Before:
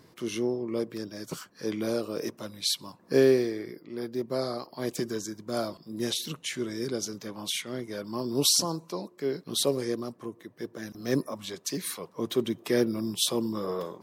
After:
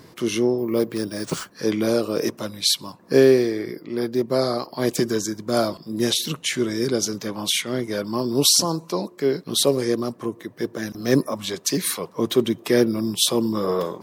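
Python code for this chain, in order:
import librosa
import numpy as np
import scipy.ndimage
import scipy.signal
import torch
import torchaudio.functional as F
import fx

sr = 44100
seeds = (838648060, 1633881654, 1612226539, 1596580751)

p1 = fx.rider(x, sr, range_db=5, speed_s=0.5)
p2 = x + (p1 * librosa.db_to_amplitude(-2.0))
p3 = fx.resample_bad(p2, sr, factor=3, down='none', up='hold', at=(0.58, 1.54))
y = p3 * librosa.db_to_amplitude(3.0)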